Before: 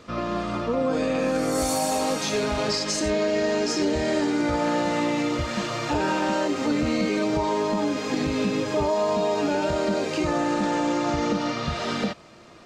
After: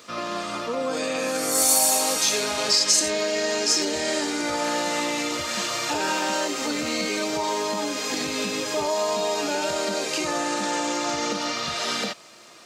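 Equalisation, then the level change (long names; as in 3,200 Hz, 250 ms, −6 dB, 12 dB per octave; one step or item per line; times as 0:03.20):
high-pass filter 71 Hz
RIAA equalisation recording
0.0 dB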